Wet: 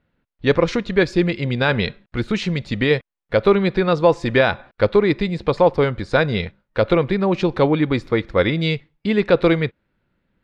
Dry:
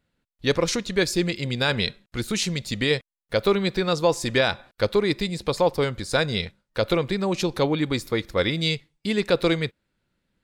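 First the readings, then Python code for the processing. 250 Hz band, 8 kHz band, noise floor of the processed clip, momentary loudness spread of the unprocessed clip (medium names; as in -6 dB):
+6.0 dB, under -10 dB, -79 dBFS, 6 LU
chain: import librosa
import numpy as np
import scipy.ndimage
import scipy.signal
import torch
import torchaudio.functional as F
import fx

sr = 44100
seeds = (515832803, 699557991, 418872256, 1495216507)

y = scipy.signal.sosfilt(scipy.signal.butter(2, 2400.0, 'lowpass', fs=sr, output='sos'), x)
y = y * 10.0 ** (6.0 / 20.0)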